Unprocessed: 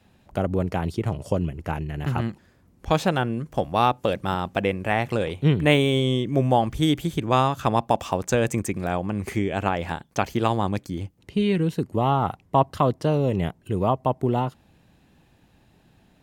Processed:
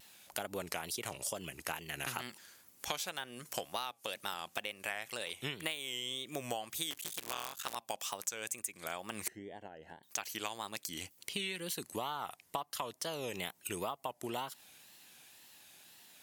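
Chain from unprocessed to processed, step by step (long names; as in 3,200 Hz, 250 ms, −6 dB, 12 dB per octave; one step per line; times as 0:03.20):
0:06.91–0:07.76: sub-harmonics by changed cycles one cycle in 3, muted
first difference
downward compressor 20 to 1, threshold −49 dBFS, peak gain reduction 24.5 dB
0:09.28–0:10.03: moving average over 36 samples
tape wow and flutter 120 cents
level +14.5 dB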